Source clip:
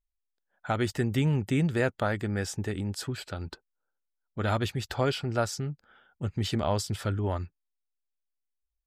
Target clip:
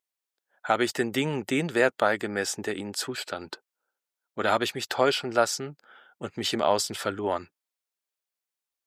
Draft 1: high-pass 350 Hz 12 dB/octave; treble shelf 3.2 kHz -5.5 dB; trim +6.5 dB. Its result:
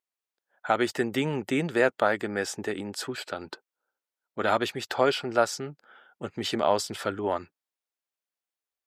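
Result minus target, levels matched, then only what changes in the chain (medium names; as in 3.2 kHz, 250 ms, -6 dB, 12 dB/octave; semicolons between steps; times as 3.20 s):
8 kHz band -4.0 dB
remove: treble shelf 3.2 kHz -5.5 dB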